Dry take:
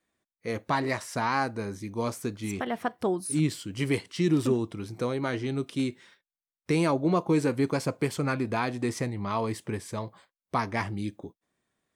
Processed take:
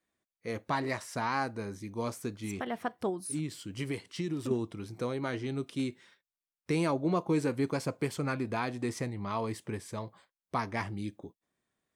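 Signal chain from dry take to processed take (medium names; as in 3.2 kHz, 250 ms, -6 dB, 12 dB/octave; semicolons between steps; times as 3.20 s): 3.09–4.51 s: compression 4:1, threshold -27 dBFS, peak gain reduction 7.5 dB; trim -4.5 dB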